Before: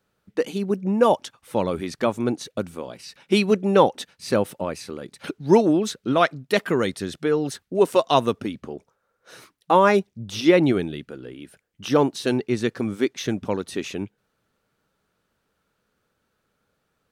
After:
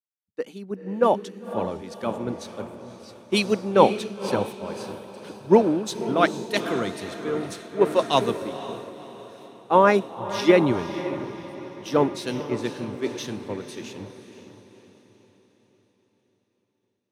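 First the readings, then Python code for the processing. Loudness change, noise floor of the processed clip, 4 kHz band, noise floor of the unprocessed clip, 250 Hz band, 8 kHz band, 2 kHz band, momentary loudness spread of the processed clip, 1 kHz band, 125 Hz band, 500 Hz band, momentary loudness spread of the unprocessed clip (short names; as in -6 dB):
-2.0 dB, -74 dBFS, -1.5 dB, -74 dBFS, -3.0 dB, -2.5 dB, -1.5 dB, 20 LU, -0.5 dB, -3.5 dB, -1.5 dB, 18 LU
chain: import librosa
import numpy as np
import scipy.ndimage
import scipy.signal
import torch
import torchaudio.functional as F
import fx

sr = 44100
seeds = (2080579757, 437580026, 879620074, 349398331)

y = fx.echo_diffused(x, sr, ms=514, feedback_pct=68, wet_db=-6)
y = fx.band_widen(y, sr, depth_pct=100)
y = y * 10.0 ** (-6.0 / 20.0)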